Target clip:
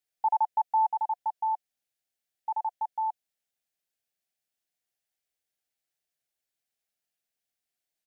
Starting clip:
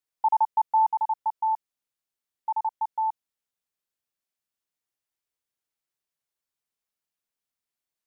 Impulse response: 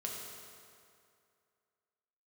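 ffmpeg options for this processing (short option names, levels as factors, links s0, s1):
-af "firequalizer=gain_entry='entry(410,0);entry(730,6);entry(1000,-8);entry(1600,3)':delay=0.05:min_phase=1,volume=0.841"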